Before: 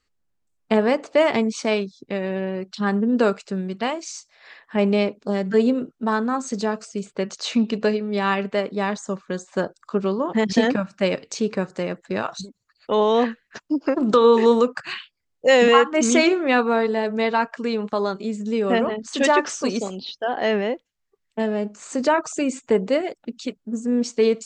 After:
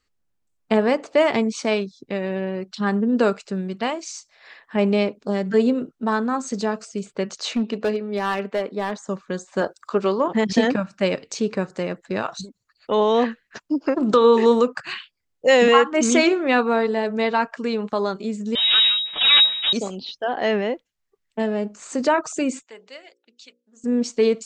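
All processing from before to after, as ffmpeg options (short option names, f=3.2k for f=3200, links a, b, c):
-filter_complex "[0:a]asettb=1/sr,asplit=3[a][b][c];[a]atrim=end=7.534[d];[b]atrim=start=7.53:end=9.09,asetpts=PTS-STARTPTS,afade=t=in:d=0.004:c=qsin,afade=t=out:st=1.556:d=0.004:c=qsin,highpass=220,highshelf=f=3.6k:g=-6.5,volume=16.5dB,asoftclip=hard,volume=-16.5dB[e];[c]atrim=start=9.086[f];[d][e]acrossfade=d=0.004:c1=hsin:c2=qsin[g];[g][f]acrossfade=d=0.004:c1=qsin:c2=hsin,asettb=1/sr,asplit=3[h][i][j];[h]atrim=end=9.614[k];[i]atrim=start=9.61:end=10.28,asetpts=PTS-STARTPTS,afade=t=in:d=0.004:c=qsin,afade=t=out:st=0.666:d=0.004:c=qsin,highpass=62,equalizer=f=160:t=o:w=1.9:g=-10,acontrast=50[l];[j]atrim=start=10.276[m];[k][l]acrossfade=d=0.004:c1=hsin:c2=qsin[n];[n][m]acrossfade=d=0.004:c1=qsin:c2=hsin,asettb=1/sr,asplit=3[o][p][q];[o]atrim=end=18.554[r];[p]atrim=start=18.55:end=19.73,asetpts=PTS-STARTPTS,afade=t=in:d=0.004:c=qsin,afade=t=out:st=1.176:d=0.004:c=qsin,aeval=exprs='abs(val(0))':c=same,aecho=1:1:7.5:0.62,atrim=end_sample=52038,lowpass=f=3.2k:t=q:w=0.5098,lowpass=f=3.2k:t=q:w=0.6013,lowpass=f=3.2k:t=q:w=0.9,lowpass=f=3.2k:t=q:w=2.563,afreqshift=-3800[s];[q]atrim=start=19.726[t];[r][s]acrossfade=d=0.004:c1=hsin:c2=qsin[u];[u][t]acrossfade=d=0.004:c1=qsin:c2=hsin,asettb=1/sr,asplit=3[v][w][x];[v]atrim=end=22.634[y];[w]atrim=start=22.63:end=23.84,asetpts=PTS-STARTPTS,afade=t=in:d=0.004:c=qsin,afade=t=out:st=1.206:d=0.004:c=qsin,lowpass=4.4k,aderivative,bandreject=f=60:t=h:w=6,bandreject=f=120:t=h:w=6,bandreject=f=180:t=h:w=6,bandreject=f=240:t=h:w=6,bandreject=f=300:t=h:w=6,bandreject=f=360:t=h:w=6,bandreject=f=420:t=h:w=6,bandreject=f=480:t=h:w=6,bandreject=f=540:t=h:w=6[z];[x]atrim=start=23.836[aa];[y][z]acrossfade=d=0.004:c1=hsin:c2=qsin[ab];[ab][aa]acrossfade=d=0.004:c1=qsin:c2=hsin"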